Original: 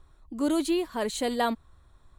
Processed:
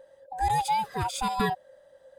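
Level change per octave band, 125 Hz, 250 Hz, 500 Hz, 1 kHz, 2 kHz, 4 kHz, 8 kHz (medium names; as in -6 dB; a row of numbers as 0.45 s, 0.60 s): no reading, -9.5 dB, -7.5 dB, +8.0 dB, +1.5 dB, -1.0 dB, 0.0 dB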